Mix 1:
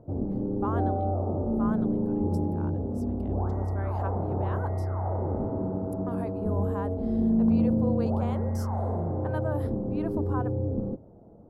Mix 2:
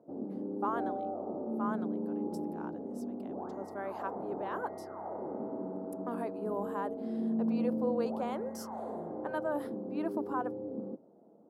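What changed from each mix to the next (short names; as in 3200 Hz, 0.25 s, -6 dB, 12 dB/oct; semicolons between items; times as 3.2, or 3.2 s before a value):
background -6.5 dB; master: add HPF 210 Hz 24 dB/oct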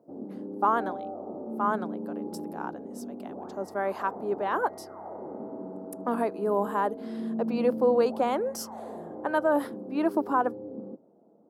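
speech +10.5 dB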